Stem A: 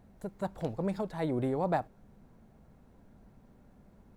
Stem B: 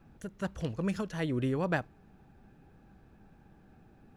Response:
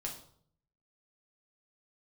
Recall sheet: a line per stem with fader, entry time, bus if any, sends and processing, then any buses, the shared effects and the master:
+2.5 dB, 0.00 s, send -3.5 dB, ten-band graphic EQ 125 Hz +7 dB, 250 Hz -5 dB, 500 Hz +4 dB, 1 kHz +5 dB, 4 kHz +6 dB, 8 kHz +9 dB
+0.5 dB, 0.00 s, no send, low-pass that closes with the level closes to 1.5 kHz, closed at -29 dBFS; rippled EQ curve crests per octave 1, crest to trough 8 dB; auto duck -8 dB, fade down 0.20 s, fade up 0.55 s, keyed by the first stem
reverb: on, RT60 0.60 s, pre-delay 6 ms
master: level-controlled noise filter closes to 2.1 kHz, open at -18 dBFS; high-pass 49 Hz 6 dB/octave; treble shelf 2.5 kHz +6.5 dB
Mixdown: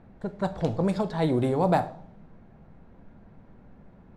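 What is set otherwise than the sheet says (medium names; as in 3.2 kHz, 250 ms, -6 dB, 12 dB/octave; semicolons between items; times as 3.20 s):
stem A: missing ten-band graphic EQ 125 Hz +7 dB, 250 Hz -5 dB, 500 Hz +4 dB, 1 kHz +5 dB, 4 kHz +6 dB, 8 kHz +9 dB; master: missing high-pass 49 Hz 6 dB/octave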